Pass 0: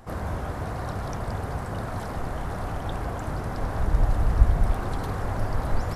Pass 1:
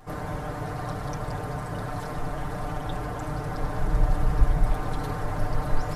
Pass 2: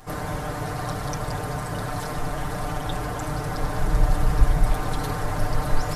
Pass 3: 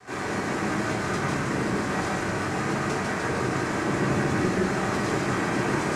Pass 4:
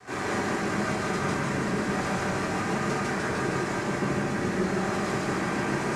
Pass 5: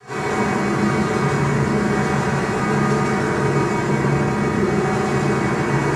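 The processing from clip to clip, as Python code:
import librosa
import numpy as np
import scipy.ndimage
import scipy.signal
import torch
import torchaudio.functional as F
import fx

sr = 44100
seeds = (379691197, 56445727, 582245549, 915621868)

y1 = x + 0.97 * np.pad(x, (int(6.7 * sr / 1000.0), 0))[:len(x)]
y1 = y1 * librosa.db_to_amplitude(-3.0)
y2 = fx.high_shelf(y1, sr, hz=2700.0, db=8.0)
y2 = y2 * librosa.db_to_amplitude(2.5)
y3 = fx.noise_vocoder(y2, sr, seeds[0], bands=3)
y3 = y3 + 10.0 ** (-4.5 / 20.0) * np.pad(y3, (int(149 * sr / 1000.0), 0))[:len(y3)]
y3 = fx.room_shoebox(y3, sr, seeds[1], volume_m3=380.0, walls='furnished', distance_m=3.6)
y3 = y3 * librosa.db_to_amplitude(-5.0)
y4 = fx.rider(y3, sr, range_db=10, speed_s=0.5)
y4 = y4 + 10.0 ** (-3.0 / 20.0) * np.pad(y4, (int(154 * sr / 1000.0), 0))[:len(y4)]
y4 = y4 * librosa.db_to_amplitude(-3.5)
y5 = fx.rev_fdn(y4, sr, rt60_s=0.86, lf_ratio=1.45, hf_ratio=0.45, size_ms=42.0, drr_db=-6.5)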